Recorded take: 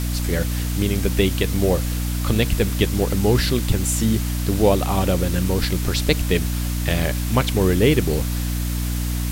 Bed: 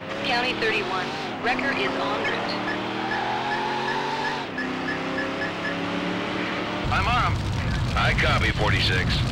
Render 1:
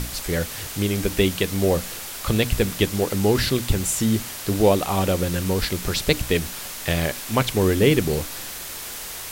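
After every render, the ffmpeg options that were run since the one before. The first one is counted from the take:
-af "bandreject=f=60:t=h:w=6,bandreject=f=120:t=h:w=6,bandreject=f=180:t=h:w=6,bandreject=f=240:t=h:w=6,bandreject=f=300:t=h:w=6"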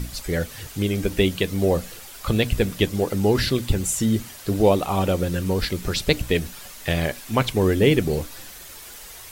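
-af "afftdn=nr=9:nf=-34"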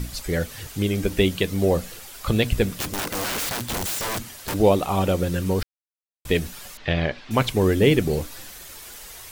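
-filter_complex "[0:a]asplit=3[a][b][c];[a]afade=t=out:st=2.74:d=0.02[d];[b]aeval=exprs='(mod(12.6*val(0)+1,2)-1)/12.6':c=same,afade=t=in:st=2.74:d=0.02,afade=t=out:st=4.53:d=0.02[e];[c]afade=t=in:st=4.53:d=0.02[f];[d][e][f]amix=inputs=3:normalize=0,asettb=1/sr,asplit=3[g][h][i];[g]atrim=end=6.774[j];[h]atrim=start=6.77:end=7.31,asetpts=PTS-STARTPTS,afade=t=in:d=0.004:c=qsin,afade=t=out:st=0.536:d=0.004:c=qsin,lowpass=f=4.3k:w=0.5412,lowpass=f=4.3k:w=1.3066[k];[i]atrim=start=7.306[l];[j][k]acrossfade=d=0.004:c1=hsin:c2=qsin[m];[m][l]acrossfade=d=0.004:c1=qsin:c2=hsin,asplit=3[n][o][p];[n]atrim=end=5.63,asetpts=PTS-STARTPTS,afade=t=out:st=5.626:d=0.004:c=hsin[q];[o]atrim=start=5.63:end=6.25,asetpts=PTS-STARTPTS,volume=0[r];[p]atrim=start=6.25,asetpts=PTS-STARTPTS,afade=t=in:d=0.004:c=hsin[s];[q][r][s]concat=n=3:v=0:a=1"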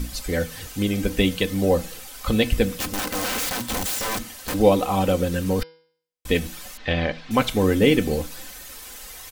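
-af "aecho=1:1:3.9:0.52,bandreject=f=162.1:t=h:w=4,bandreject=f=324.2:t=h:w=4,bandreject=f=486.3:t=h:w=4,bandreject=f=648.4:t=h:w=4,bandreject=f=810.5:t=h:w=4,bandreject=f=972.6:t=h:w=4,bandreject=f=1.1347k:t=h:w=4,bandreject=f=1.2968k:t=h:w=4,bandreject=f=1.4589k:t=h:w=4,bandreject=f=1.621k:t=h:w=4,bandreject=f=1.7831k:t=h:w=4,bandreject=f=1.9452k:t=h:w=4,bandreject=f=2.1073k:t=h:w=4,bandreject=f=2.2694k:t=h:w=4,bandreject=f=2.4315k:t=h:w=4,bandreject=f=2.5936k:t=h:w=4,bandreject=f=2.7557k:t=h:w=4,bandreject=f=2.9178k:t=h:w=4,bandreject=f=3.0799k:t=h:w=4,bandreject=f=3.242k:t=h:w=4,bandreject=f=3.4041k:t=h:w=4,bandreject=f=3.5662k:t=h:w=4,bandreject=f=3.7283k:t=h:w=4,bandreject=f=3.8904k:t=h:w=4,bandreject=f=4.0525k:t=h:w=4,bandreject=f=4.2146k:t=h:w=4,bandreject=f=4.3767k:t=h:w=4,bandreject=f=4.5388k:t=h:w=4,bandreject=f=4.7009k:t=h:w=4,bandreject=f=4.863k:t=h:w=4,bandreject=f=5.0251k:t=h:w=4,bandreject=f=5.1872k:t=h:w=4,bandreject=f=5.3493k:t=h:w=4,bandreject=f=5.5114k:t=h:w=4"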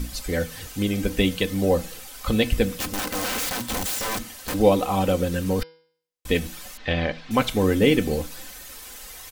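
-af "volume=-1dB"

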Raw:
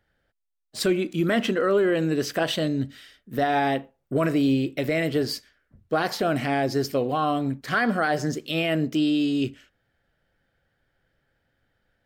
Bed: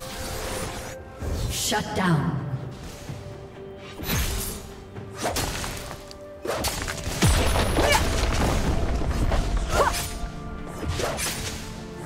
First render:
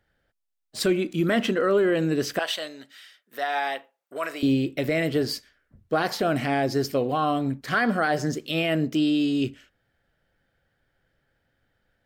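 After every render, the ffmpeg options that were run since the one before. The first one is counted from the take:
-filter_complex "[0:a]asettb=1/sr,asplit=3[a][b][c];[a]atrim=end=2.394[d];[b]atrim=start=2.39:end=4.43,asetpts=PTS-STARTPTS,afade=t=in:d=0.004:c=qsin,afade=t=out:st=2.036:d=0.004:c=qsin,highpass=800[e];[c]atrim=start=4.426[f];[d][e]acrossfade=d=0.004:c1=hsin:c2=qsin[g];[g][f]acrossfade=d=0.004:c1=qsin:c2=hsin"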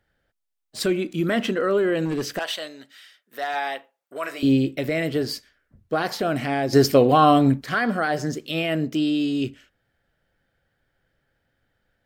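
-filter_complex "[0:a]asettb=1/sr,asplit=3[a][b][c];[a]atrim=end=2.054[d];[b]atrim=start=2.05:end=3.56,asetpts=PTS-STARTPTS,afade=t=in:d=0.004:c=qsin,afade=t=out:st=1.506:d=0.004:c=qsin,asoftclip=type=hard:threshold=-21dB[e];[c]atrim=start=3.556[f];[d][e]acrossfade=d=0.004:c1=hsin:c2=qsin[g];[g][f]acrossfade=d=0.004:c1=qsin:c2=hsin,asettb=1/sr,asplit=3[h][i][j];[h]atrim=end=4.264[k];[i]atrim=start=4.26:end=4.77,asetpts=PTS-STARTPTS,afade=t=in:d=0.004:c=qsin,afade=t=out:st=0.506:d=0.004:c=qsin,asplit=2[l][m];[m]adelay=15,volume=-5dB[n];[l][n]amix=inputs=2:normalize=0,atrim=end_sample=22491[o];[j]atrim=start=4.766[p];[k][o]acrossfade=d=0.004:c1=hsin:c2=qsin[q];[q][p]acrossfade=d=0.004:c1=qsin:c2=hsin,asplit=3[r][s][t];[r]atrim=end=6.732[u];[s]atrim=start=6.728:end=7.642,asetpts=PTS-STARTPTS,volume=9dB[v];[t]atrim=start=7.638[w];[u][v]acrossfade=d=0.004:c1=hsin:c2=hsin[x];[x][w]acrossfade=d=0.004:c1=hsin:c2=hsin"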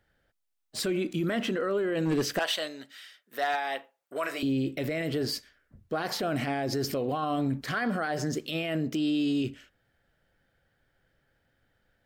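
-af "acompressor=threshold=-21dB:ratio=4,alimiter=limit=-21.5dB:level=0:latency=1:release=32"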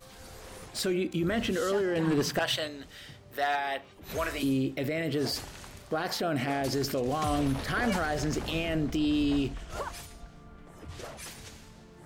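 -filter_complex "[1:a]volume=-15.5dB[a];[0:a][a]amix=inputs=2:normalize=0"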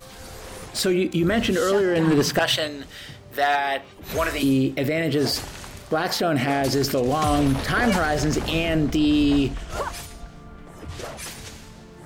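-af "volume=8dB"

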